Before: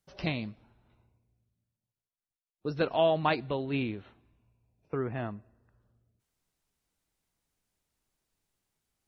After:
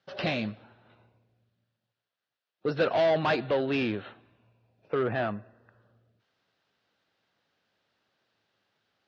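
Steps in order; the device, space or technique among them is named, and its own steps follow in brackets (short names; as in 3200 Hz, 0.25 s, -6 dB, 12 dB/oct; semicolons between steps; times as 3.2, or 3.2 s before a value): overdrive pedal into a guitar cabinet (overdrive pedal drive 25 dB, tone 4200 Hz, clips at -12.5 dBFS; speaker cabinet 76–4500 Hz, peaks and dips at 110 Hz +8 dB, 210 Hz +3 dB, 540 Hz +4 dB, 980 Hz -4 dB, 1600 Hz +3 dB, 2200 Hz -5 dB); gain -5 dB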